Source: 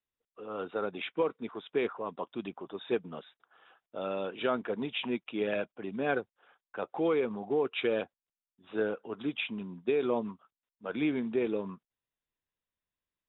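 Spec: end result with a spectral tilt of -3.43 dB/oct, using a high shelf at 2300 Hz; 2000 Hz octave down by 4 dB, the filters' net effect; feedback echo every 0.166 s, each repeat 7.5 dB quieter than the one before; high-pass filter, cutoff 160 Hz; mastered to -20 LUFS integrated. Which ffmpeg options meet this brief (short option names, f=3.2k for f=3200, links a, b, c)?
-af "highpass=160,equalizer=f=2k:t=o:g=-9,highshelf=f=2.3k:g=5.5,aecho=1:1:166|332|498|664|830:0.422|0.177|0.0744|0.0312|0.0131,volume=13.5dB"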